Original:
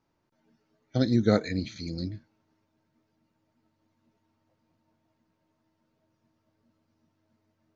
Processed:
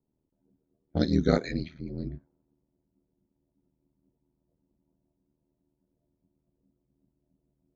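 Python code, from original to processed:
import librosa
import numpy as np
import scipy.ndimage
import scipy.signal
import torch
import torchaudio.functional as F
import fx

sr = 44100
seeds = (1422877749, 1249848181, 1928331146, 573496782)

y = x * np.sin(2.0 * np.pi * 39.0 * np.arange(len(x)) / sr)
y = fx.env_lowpass(y, sr, base_hz=390.0, full_db=-24.0)
y = F.gain(torch.from_numpy(y), 2.0).numpy()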